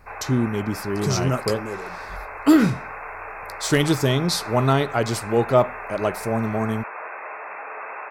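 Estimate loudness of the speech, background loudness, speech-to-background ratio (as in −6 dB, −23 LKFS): −22.0 LKFS, −34.0 LKFS, 12.0 dB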